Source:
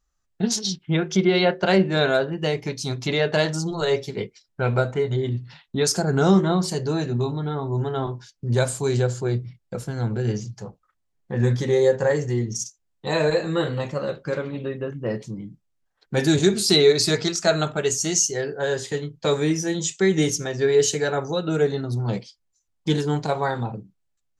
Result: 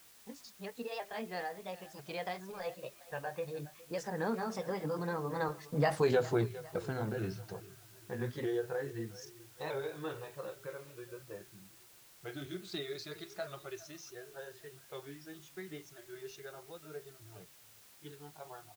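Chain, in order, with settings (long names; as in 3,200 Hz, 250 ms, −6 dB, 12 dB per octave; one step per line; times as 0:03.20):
pitch shifter swept by a sawtooth +2 semitones, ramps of 1,462 ms
source passing by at 0:07.97, 40 m/s, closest 11 metres
Bessel low-pass filter 2,700 Hz, order 2
low-shelf EQ 300 Hz −11 dB
downward compressor 2 to 1, threshold −47 dBFS, peak gain reduction 11.5 dB
repeating echo 532 ms, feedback 49%, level −17.5 dB
noise reduction from a noise print of the clip's start 19 dB
tempo change 1.3×
background noise white −73 dBFS
level +13 dB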